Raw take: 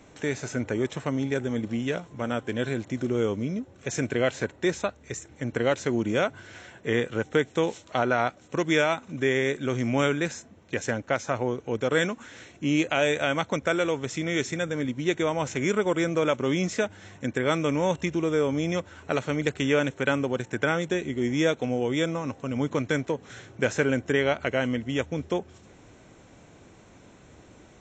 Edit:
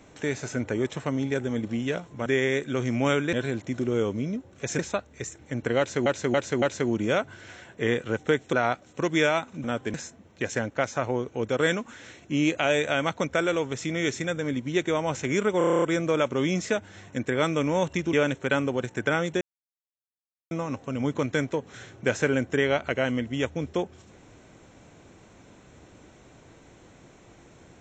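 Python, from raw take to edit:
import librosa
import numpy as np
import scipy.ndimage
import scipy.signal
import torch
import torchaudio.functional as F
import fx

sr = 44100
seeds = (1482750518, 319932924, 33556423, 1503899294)

y = fx.edit(x, sr, fx.swap(start_s=2.26, length_s=0.3, other_s=9.19, other_length_s=1.07),
    fx.cut(start_s=4.02, length_s=0.67),
    fx.repeat(start_s=5.68, length_s=0.28, count=4),
    fx.cut(start_s=7.59, length_s=0.49),
    fx.stutter(start_s=15.9, slice_s=0.03, count=9),
    fx.cut(start_s=18.21, length_s=1.48),
    fx.silence(start_s=20.97, length_s=1.1), tone=tone)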